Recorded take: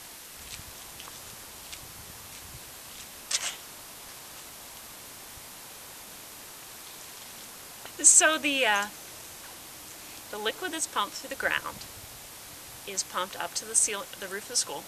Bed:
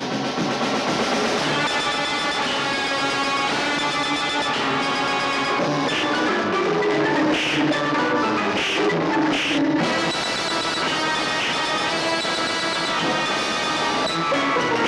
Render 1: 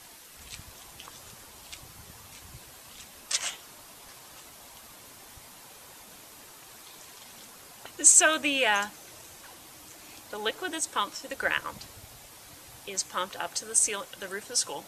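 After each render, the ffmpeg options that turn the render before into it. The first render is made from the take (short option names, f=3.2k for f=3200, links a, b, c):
-af "afftdn=nr=6:nf=-46"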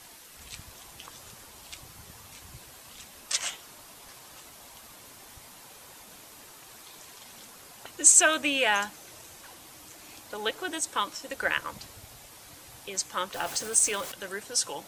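-filter_complex "[0:a]asettb=1/sr,asplit=3[a][b][c];[a]atrim=end=13.344[d];[b]atrim=start=13.34:end=14.12,asetpts=PTS-STARTPTS,afade=t=in:d=0.004:c=qsin,afade=t=out:st=0.776:d=0.004:c=qsin,aeval=exprs='val(0)+0.5*0.0168*sgn(val(0))':c=same[e];[c]atrim=start=14.116[f];[d][e]acrossfade=d=0.004:c1=hsin:c2=qsin[g];[g][f]acrossfade=d=0.004:c1=qsin:c2=hsin"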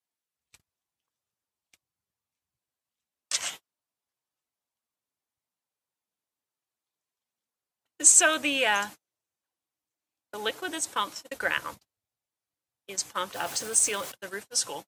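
-af "agate=range=-43dB:threshold=-38dB:ratio=16:detection=peak,highpass=69"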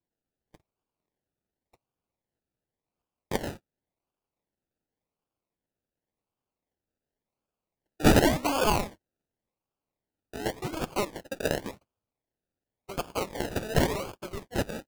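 -filter_complex "[0:a]acrossover=split=1600[a][b];[b]asoftclip=type=hard:threshold=-12.5dB[c];[a][c]amix=inputs=2:normalize=0,acrusher=samples=32:mix=1:aa=0.000001:lfo=1:lforange=19.2:lforate=0.9"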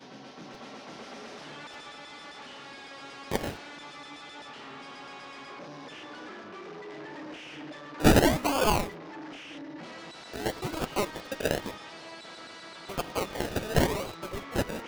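-filter_complex "[1:a]volume=-22.5dB[a];[0:a][a]amix=inputs=2:normalize=0"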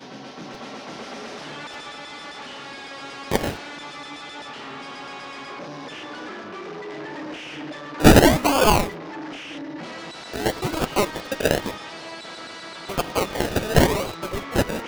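-af "volume=8dB"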